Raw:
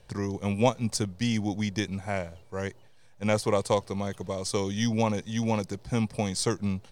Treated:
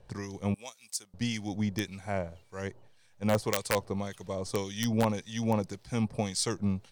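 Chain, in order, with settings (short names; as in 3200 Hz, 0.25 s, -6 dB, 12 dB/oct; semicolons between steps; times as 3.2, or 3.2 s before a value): 0.54–1.14 differentiator; wrapped overs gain 13.5 dB; harmonic tremolo 1.8 Hz, depth 70%, crossover 1400 Hz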